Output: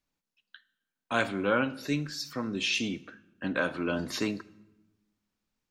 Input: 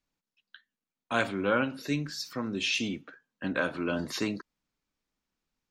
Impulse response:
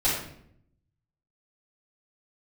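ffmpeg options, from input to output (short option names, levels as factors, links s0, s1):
-filter_complex "[0:a]asplit=2[s0][s1];[1:a]atrim=start_sample=2205,asetrate=25137,aresample=44100,highshelf=f=5600:g=7[s2];[s1][s2]afir=irnorm=-1:irlink=0,volume=0.0178[s3];[s0][s3]amix=inputs=2:normalize=0"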